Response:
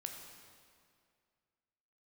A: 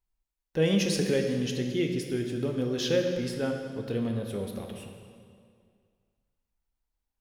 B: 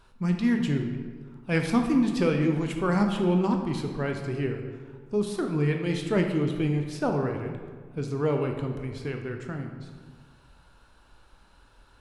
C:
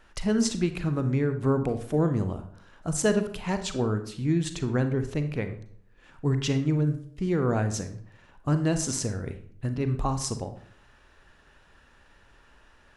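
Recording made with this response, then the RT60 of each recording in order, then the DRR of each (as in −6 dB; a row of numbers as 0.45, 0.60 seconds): A; 2.2, 1.6, 0.60 seconds; 2.5, 3.5, 8.0 decibels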